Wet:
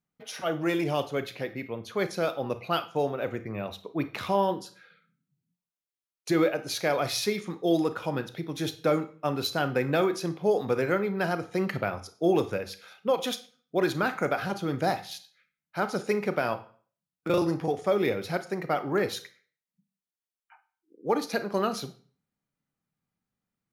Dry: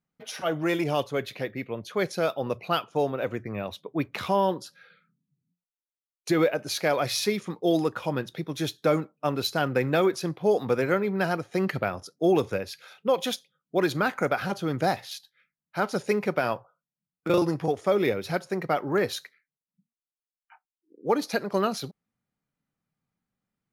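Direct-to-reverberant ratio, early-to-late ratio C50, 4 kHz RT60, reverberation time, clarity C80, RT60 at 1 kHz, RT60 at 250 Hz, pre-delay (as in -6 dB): 11.0 dB, 14.0 dB, 0.40 s, 0.45 s, 19.5 dB, 0.45 s, 0.50 s, 31 ms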